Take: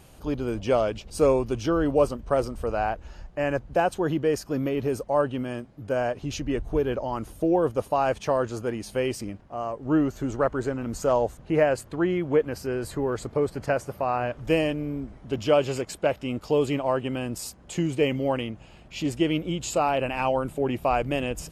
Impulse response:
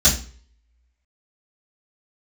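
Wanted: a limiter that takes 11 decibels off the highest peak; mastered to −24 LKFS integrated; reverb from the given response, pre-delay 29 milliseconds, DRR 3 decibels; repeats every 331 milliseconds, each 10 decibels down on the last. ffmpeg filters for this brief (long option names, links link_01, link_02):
-filter_complex "[0:a]alimiter=limit=-19dB:level=0:latency=1,aecho=1:1:331|662|993|1324:0.316|0.101|0.0324|0.0104,asplit=2[link_01][link_02];[1:a]atrim=start_sample=2205,adelay=29[link_03];[link_02][link_03]afir=irnorm=-1:irlink=0,volume=-20.5dB[link_04];[link_01][link_04]amix=inputs=2:normalize=0,volume=1.5dB"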